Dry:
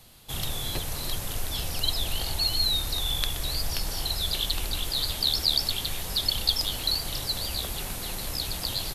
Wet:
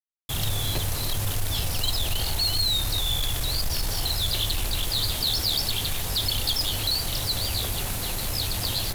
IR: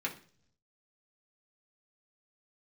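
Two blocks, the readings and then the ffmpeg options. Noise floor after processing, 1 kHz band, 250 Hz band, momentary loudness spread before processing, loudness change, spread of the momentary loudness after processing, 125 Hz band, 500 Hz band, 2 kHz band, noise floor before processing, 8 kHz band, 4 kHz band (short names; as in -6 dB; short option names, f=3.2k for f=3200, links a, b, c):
-30 dBFS, +3.0 dB, +3.5 dB, 8 LU, +2.0 dB, 5 LU, +6.5 dB, +3.0 dB, +3.0 dB, -35 dBFS, +4.0 dB, +1.0 dB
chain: -af "anlmdn=1.58,asoftclip=type=tanh:threshold=-24.5dB,equalizer=f=100:w=7.1:g=13.5,areverse,acompressor=mode=upward:threshold=-40dB:ratio=2.5,areverse,bandreject=f=97.79:t=h:w=4,bandreject=f=195.58:t=h:w=4,bandreject=f=293.37:t=h:w=4,bandreject=f=391.16:t=h:w=4,bandreject=f=488.95:t=h:w=4,bandreject=f=586.74:t=h:w=4,bandreject=f=684.53:t=h:w=4,bandreject=f=782.32:t=h:w=4,bandreject=f=880.11:t=h:w=4,bandreject=f=977.9:t=h:w=4,bandreject=f=1.07569k:t=h:w=4,bandreject=f=1.17348k:t=h:w=4,bandreject=f=1.27127k:t=h:w=4,bandreject=f=1.36906k:t=h:w=4,bandreject=f=1.46685k:t=h:w=4,bandreject=f=1.56464k:t=h:w=4,bandreject=f=1.66243k:t=h:w=4,bandreject=f=1.76022k:t=h:w=4,bandreject=f=1.85801k:t=h:w=4,bandreject=f=1.9558k:t=h:w=4,bandreject=f=2.05359k:t=h:w=4,bandreject=f=2.15138k:t=h:w=4,acrusher=bits=6:mix=0:aa=0.000001,volume=5dB"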